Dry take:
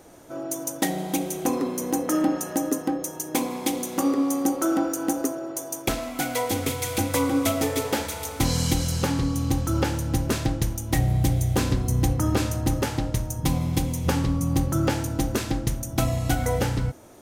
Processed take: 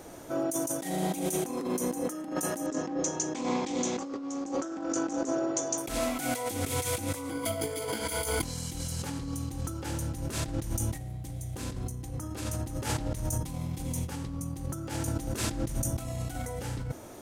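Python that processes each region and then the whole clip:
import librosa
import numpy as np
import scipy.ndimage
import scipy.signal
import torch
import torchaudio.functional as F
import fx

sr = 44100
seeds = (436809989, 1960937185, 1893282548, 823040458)

y = fx.chain(x, sr, fx.steep_lowpass(hz=7400.0, slope=72),
    fx.doppler_dist(depth_ms=0.15), at=(2.66, 5.78))
y = fx.chain(y, sr, fx.ripple_eq(per_octave=1.8, db=14),
    fx.over_compress(threshold_db=-24.0, ratio=-0.5),
    fx.notch(hz=6800.0, q=5.8), at=(7.3, 8.43))
y = fx.dynamic_eq(y, sr, hz=9100.0, q=1.1, threshold_db=-48.0, ratio=4.0, max_db=7)
y = fx.over_compress(y, sr, threshold_db=-31.0, ratio=-1.0)
y = F.gain(torch.from_numpy(y), -2.5).numpy()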